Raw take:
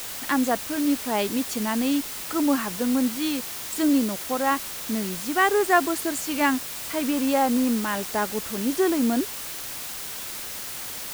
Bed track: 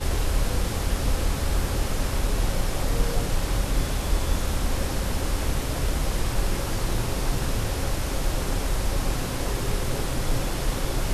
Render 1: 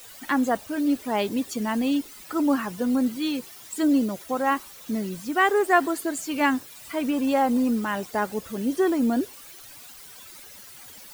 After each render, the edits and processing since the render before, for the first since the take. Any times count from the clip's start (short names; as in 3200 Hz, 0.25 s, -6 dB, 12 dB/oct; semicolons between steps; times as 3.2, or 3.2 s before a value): denoiser 14 dB, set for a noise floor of -35 dBFS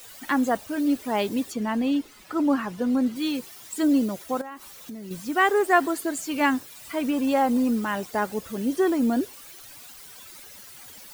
1.51–3.15 high shelf 5000 Hz -> 7700 Hz -11.5 dB; 4.41–5.11 compressor 12:1, threshold -34 dBFS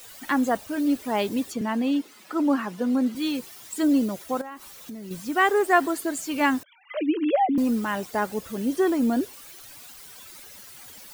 1.61–3.15 HPF 160 Hz 24 dB/oct; 6.63–7.58 sine-wave speech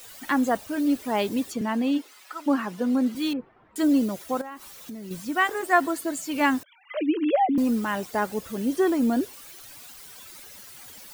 1.97–2.46 HPF 370 Hz -> 1400 Hz; 3.33–3.76 Bessel low-pass 1100 Hz, order 4; 5.25–6.35 notch comb 400 Hz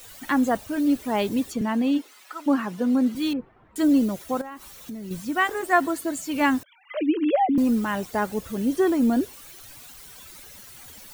low shelf 130 Hz +10 dB; notch 4900 Hz, Q 25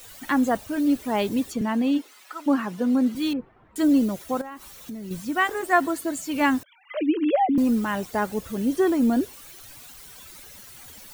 nothing audible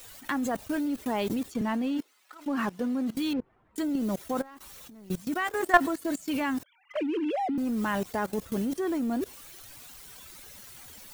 level quantiser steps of 16 dB; sample leveller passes 1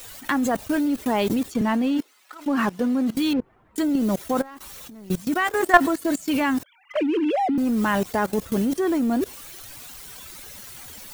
gain +7 dB; limiter -1 dBFS, peak gain reduction 2 dB